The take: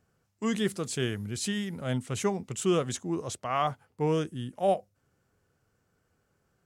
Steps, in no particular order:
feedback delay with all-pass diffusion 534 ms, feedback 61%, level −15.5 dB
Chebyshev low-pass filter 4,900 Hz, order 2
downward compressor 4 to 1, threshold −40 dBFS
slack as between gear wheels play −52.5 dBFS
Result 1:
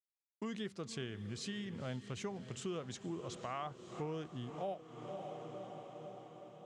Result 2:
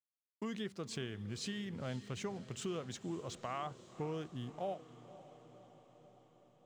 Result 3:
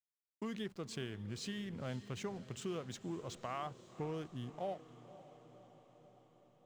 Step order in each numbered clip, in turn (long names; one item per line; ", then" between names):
slack as between gear wheels, then feedback delay with all-pass diffusion, then downward compressor, then Chebyshev low-pass filter
Chebyshev low-pass filter, then slack as between gear wheels, then downward compressor, then feedback delay with all-pass diffusion
downward compressor, then Chebyshev low-pass filter, then slack as between gear wheels, then feedback delay with all-pass diffusion